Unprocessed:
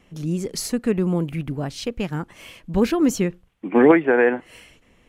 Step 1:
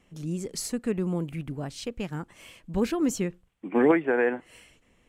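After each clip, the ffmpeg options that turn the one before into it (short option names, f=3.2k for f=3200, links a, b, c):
-af "equalizer=f=8k:t=o:w=0.44:g=5.5,volume=-7dB"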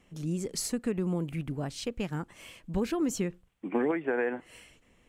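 -af "acompressor=threshold=-25dB:ratio=6"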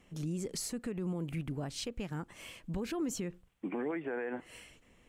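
-af "alimiter=level_in=4.5dB:limit=-24dB:level=0:latency=1:release=104,volume=-4.5dB"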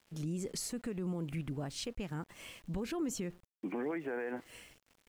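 -af "aeval=exprs='val(0)*gte(abs(val(0)),0.00141)':c=same,volume=-1dB"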